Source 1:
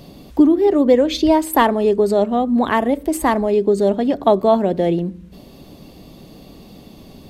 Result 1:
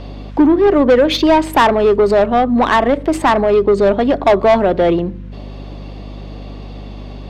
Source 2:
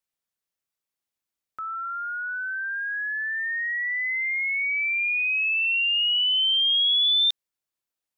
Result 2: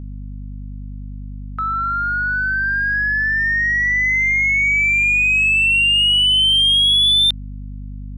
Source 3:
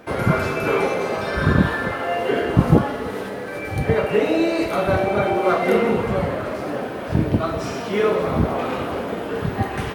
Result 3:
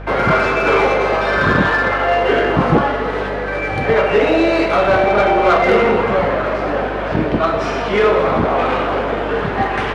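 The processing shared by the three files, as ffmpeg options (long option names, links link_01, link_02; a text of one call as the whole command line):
ffmpeg -i in.wav -filter_complex "[0:a]adynamicsmooth=sensitivity=2.5:basefreq=4600,asplit=2[link_01][link_02];[link_02]highpass=frequency=720:poles=1,volume=19dB,asoftclip=type=tanh:threshold=-1dB[link_03];[link_01][link_03]amix=inputs=2:normalize=0,lowpass=frequency=3100:poles=1,volume=-6dB,aeval=exprs='val(0)+0.0398*(sin(2*PI*50*n/s)+sin(2*PI*2*50*n/s)/2+sin(2*PI*3*50*n/s)/3+sin(2*PI*4*50*n/s)/4+sin(2*PI*5*50*n/s)/5)':channel_layout=same,volume=-1dB" out.wav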